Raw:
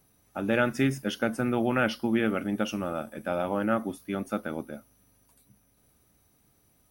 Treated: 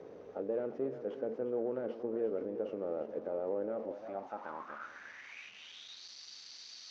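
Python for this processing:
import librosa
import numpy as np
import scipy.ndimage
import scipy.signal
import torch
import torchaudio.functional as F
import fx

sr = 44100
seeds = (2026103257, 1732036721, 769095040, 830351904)

p1 = fx.delta_mod(x, sr, bps=32000, step_db=-37.0)
p2 = fx.peak_eq(p1, sr, hz=4200.0, db=-6.0, octaves=1.2)
p3 = fx.over_compress(p2, sr, threshold_db=-34.0, ratio=-0.5)
p4 = p2 + (p3 * 10.0 ** (-1.0 / 20.0))
p5 = fx.cheby_harmonics(p4, sr, harmonics=(6,), levels_db=(-21,), full_scale_db=-12.5)
p6 = p5 + fx.echo_single(p5, sr, ms=355, db=-12.0, dry=0)
y = fx.filter_sweep_bandpass(p6, sr, from_hz=460.0, to_hz=4500.0, start_s=3.73, end_s=6.07, q=6.1)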